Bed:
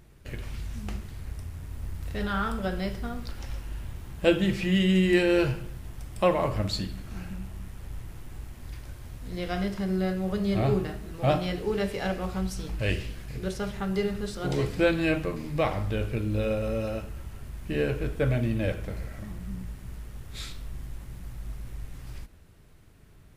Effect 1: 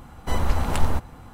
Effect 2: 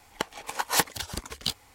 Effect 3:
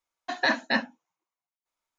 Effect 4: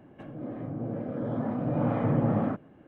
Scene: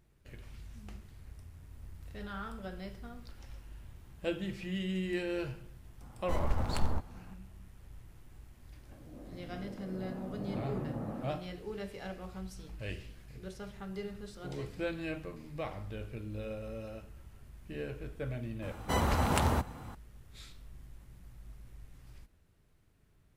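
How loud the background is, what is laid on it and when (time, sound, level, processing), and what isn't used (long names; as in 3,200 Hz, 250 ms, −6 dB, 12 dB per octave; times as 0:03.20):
bed −13 dB
0:06.01: mix in 1 −9.5 dB + adaptive Wiener filter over 15 samples
0:08.72: mix in 4 −13.5 dB
0:18.62: mix in 1 −1.5 dB + high-pass filter 81 Hz
not used: 2, 3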